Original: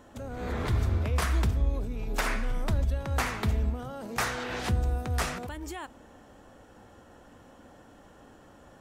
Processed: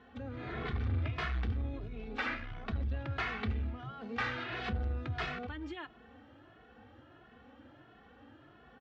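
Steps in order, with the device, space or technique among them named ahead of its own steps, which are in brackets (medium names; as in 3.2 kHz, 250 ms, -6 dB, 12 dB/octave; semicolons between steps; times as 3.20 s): barber-pole flanger into a guitar amplifier (endless flanger 2.3 ms +1.5 Hz; saturation -26.5 dBFS, distortion -13 dB; cabinet simulation 79–3600 Hz, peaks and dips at 180 Hz -10 dB, 390 Hz -4 dB, 580 Hz -8 dB, 950 Hz -8 dB); trim +2 dB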